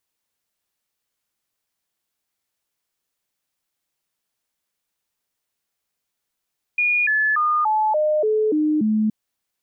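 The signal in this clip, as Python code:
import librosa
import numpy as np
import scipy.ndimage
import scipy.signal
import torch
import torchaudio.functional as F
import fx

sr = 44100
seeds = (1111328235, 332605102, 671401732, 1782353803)

y = fx.stepped_sweep(sr, from_hz=2440.0, direction='down', per_octave=2, tones=8, dwell_s=0.29, gap_s=0.0, level_db=-16.0)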